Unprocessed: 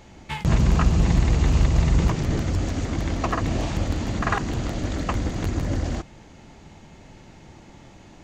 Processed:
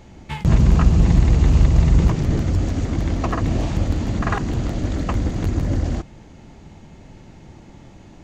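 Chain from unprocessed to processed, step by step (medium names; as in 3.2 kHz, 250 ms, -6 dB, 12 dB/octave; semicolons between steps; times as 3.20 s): bass shelf 490 Hz +6.5 dB; trim -1.5 dB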